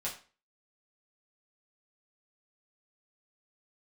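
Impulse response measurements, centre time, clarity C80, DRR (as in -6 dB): 21 ms, 14.0 dB, -6.0 dB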